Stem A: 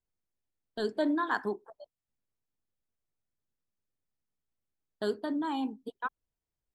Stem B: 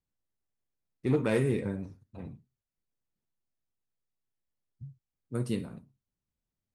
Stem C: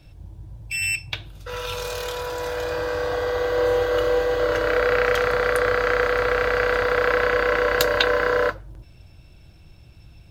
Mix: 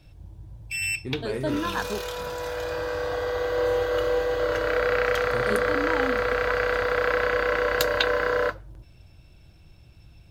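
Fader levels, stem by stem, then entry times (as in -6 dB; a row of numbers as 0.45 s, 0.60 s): +0.5 dB, -5.0 dB, -3.5 dB; 0.45 s, 0.00 s, 0.00 s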